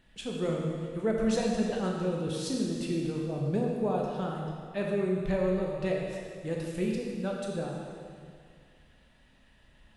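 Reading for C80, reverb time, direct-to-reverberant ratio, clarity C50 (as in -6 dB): 2.0 dB, 2.1 s, -1.5 dB, 0.5 dB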